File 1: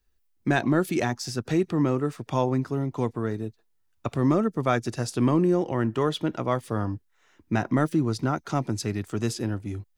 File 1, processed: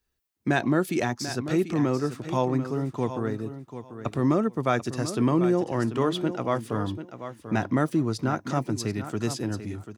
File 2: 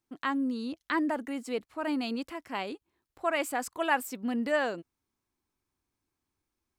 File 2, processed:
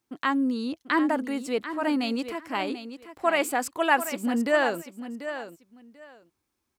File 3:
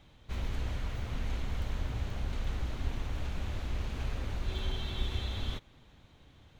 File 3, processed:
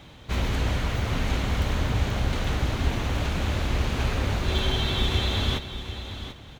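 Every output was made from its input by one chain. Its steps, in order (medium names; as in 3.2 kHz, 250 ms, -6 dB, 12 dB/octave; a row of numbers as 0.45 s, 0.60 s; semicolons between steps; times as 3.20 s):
high-pass 82 Hz 6 dB/octave; on a send: feedback delay 740 ms, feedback 18%, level -11 dB; on the sum: normalise loudness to -27 LUFS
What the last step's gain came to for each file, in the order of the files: -0.5 dB, +5.5 dB, +14.0 dB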